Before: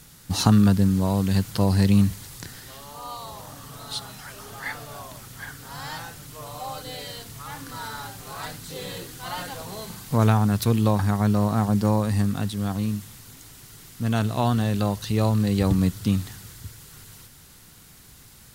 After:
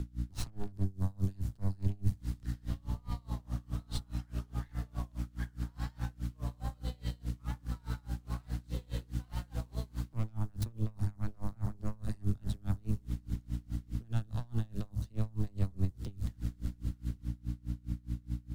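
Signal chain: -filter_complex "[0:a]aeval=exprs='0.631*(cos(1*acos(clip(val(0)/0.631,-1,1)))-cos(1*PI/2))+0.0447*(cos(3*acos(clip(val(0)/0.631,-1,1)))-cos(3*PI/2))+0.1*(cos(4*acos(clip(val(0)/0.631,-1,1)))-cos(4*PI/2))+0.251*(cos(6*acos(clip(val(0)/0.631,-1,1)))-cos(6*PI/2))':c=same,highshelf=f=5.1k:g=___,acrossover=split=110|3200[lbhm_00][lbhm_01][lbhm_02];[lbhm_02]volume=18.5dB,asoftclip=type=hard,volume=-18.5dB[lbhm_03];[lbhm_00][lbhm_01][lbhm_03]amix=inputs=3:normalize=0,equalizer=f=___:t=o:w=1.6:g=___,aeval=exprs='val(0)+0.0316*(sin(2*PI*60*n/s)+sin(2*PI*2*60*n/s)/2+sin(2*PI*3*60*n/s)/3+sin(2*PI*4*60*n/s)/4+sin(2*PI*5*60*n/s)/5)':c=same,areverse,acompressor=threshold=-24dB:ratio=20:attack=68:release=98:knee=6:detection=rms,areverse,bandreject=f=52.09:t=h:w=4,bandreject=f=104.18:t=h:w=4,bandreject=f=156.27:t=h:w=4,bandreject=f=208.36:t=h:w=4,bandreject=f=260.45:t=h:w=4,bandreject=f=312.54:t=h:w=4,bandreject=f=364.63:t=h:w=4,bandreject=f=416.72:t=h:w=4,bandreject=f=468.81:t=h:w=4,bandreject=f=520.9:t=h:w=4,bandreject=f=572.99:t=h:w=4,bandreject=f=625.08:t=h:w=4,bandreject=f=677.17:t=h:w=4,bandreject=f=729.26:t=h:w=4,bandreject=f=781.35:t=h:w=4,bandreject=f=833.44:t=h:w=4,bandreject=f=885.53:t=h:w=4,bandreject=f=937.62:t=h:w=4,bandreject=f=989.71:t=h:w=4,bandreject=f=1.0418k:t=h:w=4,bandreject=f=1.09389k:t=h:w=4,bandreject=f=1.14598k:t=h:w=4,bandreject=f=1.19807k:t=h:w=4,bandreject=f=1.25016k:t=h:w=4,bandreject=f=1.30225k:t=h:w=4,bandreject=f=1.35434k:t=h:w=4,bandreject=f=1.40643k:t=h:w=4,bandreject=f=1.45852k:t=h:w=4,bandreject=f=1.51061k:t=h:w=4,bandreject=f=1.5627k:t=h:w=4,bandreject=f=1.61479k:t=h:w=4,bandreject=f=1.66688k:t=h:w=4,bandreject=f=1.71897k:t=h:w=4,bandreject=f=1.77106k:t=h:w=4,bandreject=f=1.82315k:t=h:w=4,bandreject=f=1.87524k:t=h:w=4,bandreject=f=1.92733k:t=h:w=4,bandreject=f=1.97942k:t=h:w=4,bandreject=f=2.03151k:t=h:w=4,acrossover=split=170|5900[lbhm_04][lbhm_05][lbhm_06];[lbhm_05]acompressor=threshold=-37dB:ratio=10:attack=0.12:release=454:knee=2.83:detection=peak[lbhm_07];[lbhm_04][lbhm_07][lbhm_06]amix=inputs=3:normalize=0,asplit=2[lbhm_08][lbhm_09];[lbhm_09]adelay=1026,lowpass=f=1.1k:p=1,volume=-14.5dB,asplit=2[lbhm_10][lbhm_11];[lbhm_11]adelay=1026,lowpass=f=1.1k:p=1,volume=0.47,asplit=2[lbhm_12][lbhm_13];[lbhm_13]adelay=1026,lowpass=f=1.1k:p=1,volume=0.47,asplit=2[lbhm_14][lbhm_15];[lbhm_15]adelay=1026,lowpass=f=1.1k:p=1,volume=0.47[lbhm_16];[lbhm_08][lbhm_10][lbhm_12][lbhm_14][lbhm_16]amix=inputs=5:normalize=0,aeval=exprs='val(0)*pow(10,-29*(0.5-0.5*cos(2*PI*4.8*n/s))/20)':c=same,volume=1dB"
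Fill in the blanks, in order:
-4, 13k, -11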